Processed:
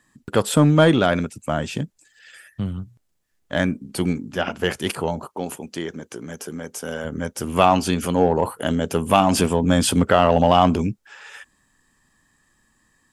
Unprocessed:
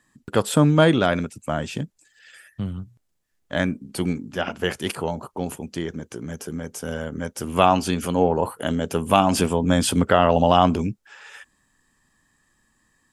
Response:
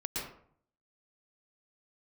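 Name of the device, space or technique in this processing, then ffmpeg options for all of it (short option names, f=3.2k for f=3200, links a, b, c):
parallel distortion: -filter_complex "[0:a]asplit=2[a][b];[b]asoftclip=type=hard:threshold=-14dB,volume=-7dB[c];[a][c]amix=inputs=2:normalize=0,asettb=1/sr,asplit=3[d][e][f];[d]atrim=end=5.244[g];[e]atrim=start=5.24:end=7.05,asetpts=PTS-STARTPTS,afade=t=in:d=0.004:c=qsin,afade=t=out:st=1.806:d=0.004:c=qsin,highpass=f=280:p=1[h];[f]atrim=start=7.046[i];[g][h]acrossfade=d=0.004:c1=hsin:c2=qsin[j];[j][i]acrossfade=d=0.004:c1=qsin:c2=hsin,volume=-1dB"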